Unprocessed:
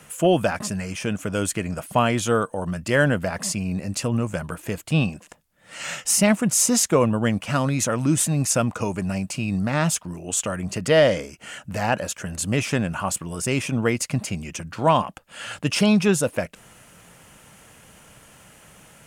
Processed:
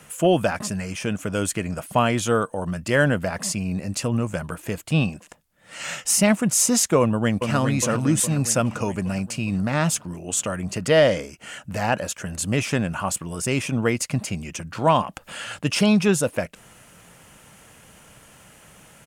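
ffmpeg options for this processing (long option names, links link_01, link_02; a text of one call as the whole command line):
ffmpeg -i in.wav -filter_complex "[0:a]asplit=2[link_01][link_02];[link_02]afade=type=in:start_time=7:duration=0.01,afade=type=out:start_time=7.55:duration=0.01,aecho=0:1:410|820|1230|1640|2050|2460|2870|3280:0.501187|0.300712|0.180427|0.108256|0.0649539|0.0389723|0.0233834|0.01403[link_03];[link_01][link_03]amix=inputs=2:normalize=0,asettb=1/sr,asplit=3[link_04][link_05][link_06];[link_04]atrim=end=14.754[link_07];[link_05]atrim=start=14.75:end=15.44,asetpts=PTS-STARTPTS,afade=type=in:duration=0.004:curve=qsin,afade=type=out:start_time=0.686:duration=0.004:curve=qsin,acompressor=mode=upward:threshold=-27dB:ratio=2.5:attack=3.2:release=140:knee=2.83:detection=peak[link_08];[link_06]atrim=start=15.436[link_09];[link_07][link_08]acrossfade=duration=0.004:curve1=hsin:curve2=qsin[link_10];[link_10][link_09]acrossfade=duration=0.004:curve1=qsin:curve2=hsin" out.wav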